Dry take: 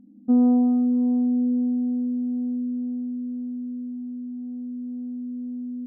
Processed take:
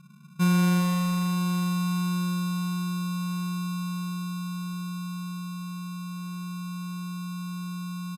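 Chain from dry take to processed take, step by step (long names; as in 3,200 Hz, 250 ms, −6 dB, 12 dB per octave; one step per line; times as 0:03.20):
in parallel at −1.5 dB: downward compressor, threshold −28 dBFS, peak gain reduction 12 dB
on the sum: decimation without filtering 25×
change of speed 0.718×
far-end echo of a speakerphone 400 ms, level −6 dB
level −6 dB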